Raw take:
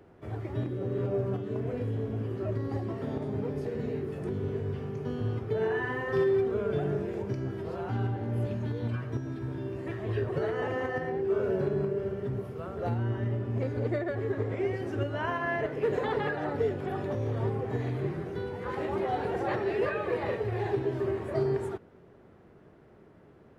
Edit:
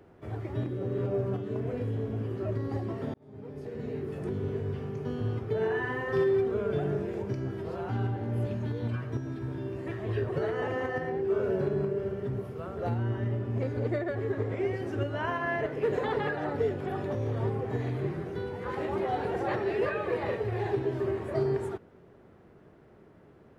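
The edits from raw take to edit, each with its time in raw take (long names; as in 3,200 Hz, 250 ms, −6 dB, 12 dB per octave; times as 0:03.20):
0:03.14–0:04.16: fade in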